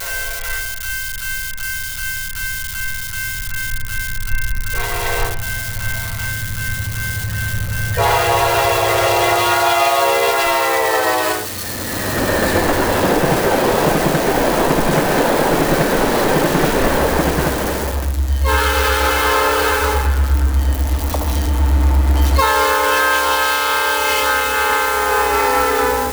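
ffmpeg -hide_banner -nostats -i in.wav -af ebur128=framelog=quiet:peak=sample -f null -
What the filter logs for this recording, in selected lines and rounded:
Integrated loudness:
  I:         -16.6 LUFS
  Threshold: -26.6 LUFS
Loudness range:
  LRA:         7.5 LU
  Threshold: -36.5 LUFS
  LRA low:   -22.1 LUFS
  LRA high:  -14.6 LUFS
Sample peak:
  Peak:       -3.0 dBFS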